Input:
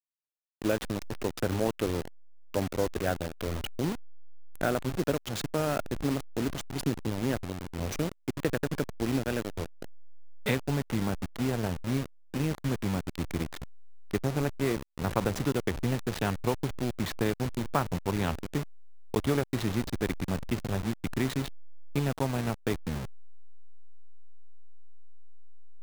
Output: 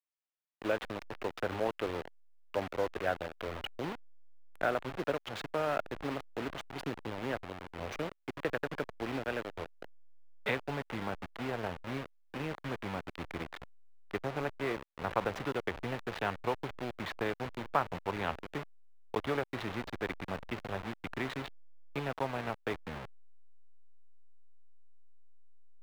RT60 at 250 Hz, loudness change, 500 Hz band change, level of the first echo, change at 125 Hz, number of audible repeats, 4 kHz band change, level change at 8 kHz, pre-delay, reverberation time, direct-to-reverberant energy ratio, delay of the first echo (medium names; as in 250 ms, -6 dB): no reverb, -5.5 dB, -3.5 dB, no echo, -12.0 dB, no echo, -5.0 dB, -15.0 dB, no reverb, no reverb, no reverb, no echo